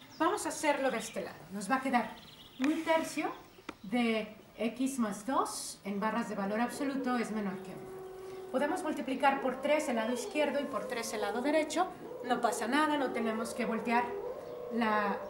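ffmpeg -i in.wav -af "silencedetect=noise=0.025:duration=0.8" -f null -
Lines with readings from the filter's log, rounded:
silence_start: 7.55
silence_end: 8.54 | silence_duration: 0.99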